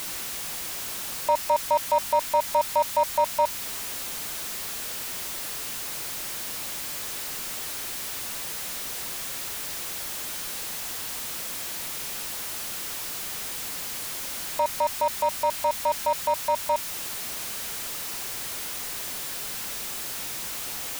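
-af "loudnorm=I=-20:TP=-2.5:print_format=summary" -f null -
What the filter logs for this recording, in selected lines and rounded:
Input Integrated:    -28.6 LUFS
Input True Peak:     -12.9 dBTP
Input LRA:             5.1 LU
Input Threshold:     -38.6 LUFS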